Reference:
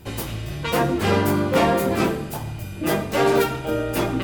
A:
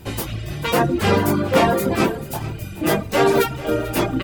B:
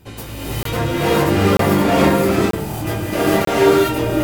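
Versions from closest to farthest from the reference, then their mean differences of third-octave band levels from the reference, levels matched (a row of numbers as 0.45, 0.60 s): A, B; 2.5, 6.0 dB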